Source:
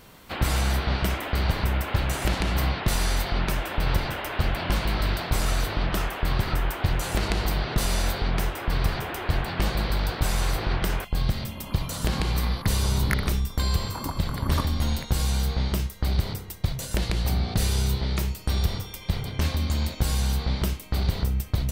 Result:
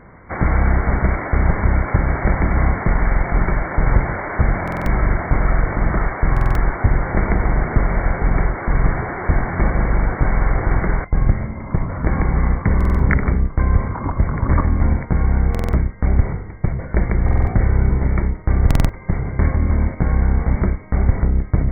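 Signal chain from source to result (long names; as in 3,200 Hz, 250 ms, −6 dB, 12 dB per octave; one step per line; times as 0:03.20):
sub-octave generator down 1 octave, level −2 dB
linear-phase brick-wall low-pass 2,300 Hz
buffer that repeats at 0:04.63/0:06.32/0:12.76/0:15.50/0:17.24/0:18.66, samples 2,048, times 4
level +7 dB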